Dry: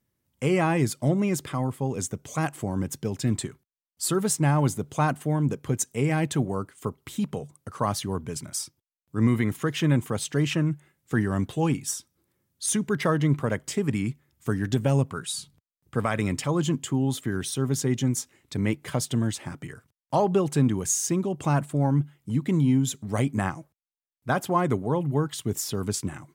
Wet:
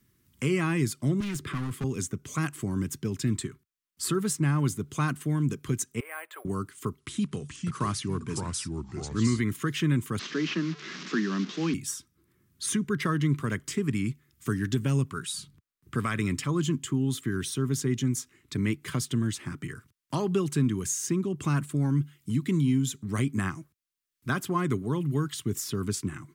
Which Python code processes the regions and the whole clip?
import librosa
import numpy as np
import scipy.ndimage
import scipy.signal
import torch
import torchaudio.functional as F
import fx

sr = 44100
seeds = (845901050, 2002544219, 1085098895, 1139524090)

y = fx.chain(x, sr, fx.high_shelf(hz=4800.0, db=-5.0),
    fx.overload_stage(gain_db=29.0),
    fx.band_squash(depth_pct=70), at=(1.2, 1.84))
y = fx.chain(y, sr, fx.ellip_highpass(hz=550.0, order=4, stop_db=60),
    fx.spacing_loss(db_at_10k=36),
    fx.resample_bad(factor=4, down='filtered', up='hold'), at=(6.0, 6.45))
y = fx.chain(y, sr, fx.block_float(bits=7),
    fx.brickwall_lowpass(high_hz=11000.0),
    fx.echo_pitch(ms=412, semitones=-3, count=2, db_per_echo=-6.0), at=(6.99, 9.41))
y = fx.chain(y, sr, fx.delta_mod(bps=32000, step_db=-33.5),
    fx.steep_highpass(hz=170.0, slope=72), at=(10.19, 11.74))
y = fx.band_shelf(y, sr, hz=660.0, db=-12.5, octaves=1.1)
y = fx.band_squash(y, sr, depth_pct=40)
y = F.gain(torch.from_numpy(y), -2.0).numpy()